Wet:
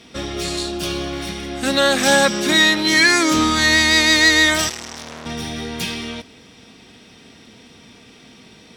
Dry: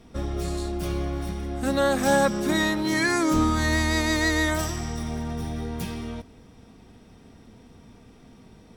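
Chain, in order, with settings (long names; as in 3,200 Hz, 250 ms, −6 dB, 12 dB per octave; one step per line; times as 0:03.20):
meter weighting curve D
in parallel at −12 dB: hard clipping −20 dBFS, distortion −9 dB
0:00.63–0:01.13: on the sum: parametric band 2,100 Hz −9 dB 0.25 octaves
0:04.69–0:05.26: saturating transformer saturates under 3,800 Hz
level +3.5 dB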